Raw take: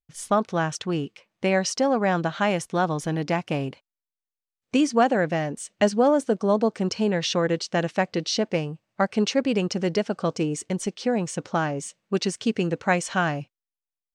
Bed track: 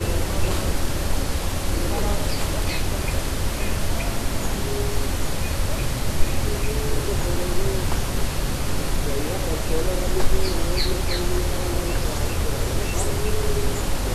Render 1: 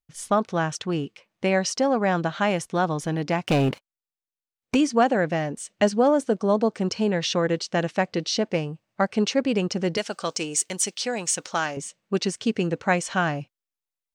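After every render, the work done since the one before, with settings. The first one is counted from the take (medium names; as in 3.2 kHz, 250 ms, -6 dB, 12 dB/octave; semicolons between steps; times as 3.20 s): 3.46–4.75 s: waveshaping leveller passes 3; 9.97–11.77 s: tilt EQ +4 dB/octave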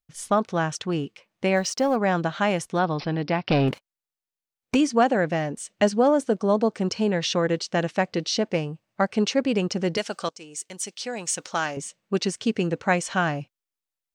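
1.56–1.96 s: companding laws mixed up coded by A; 2.79–3.68 s: careless resampling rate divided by 4×, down none, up filtered; 10.29–11.69 s: fade in, from -18.5 dB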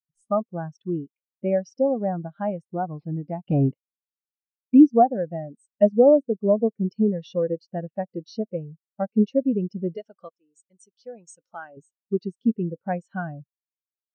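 in parallel at +1.5 dB: compression, threshold -29 dBFS, peak gain reduction 14 dB; on the sum: spectral contrast expander 2.5:1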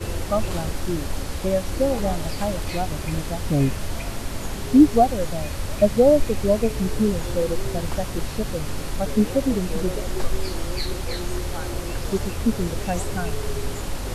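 add bed track -5 dB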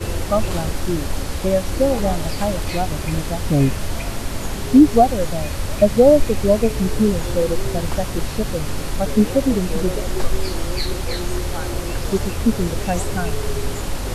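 trim +4 dB; peak limiter -2 dBFS, peak gain reduction 2.5 dB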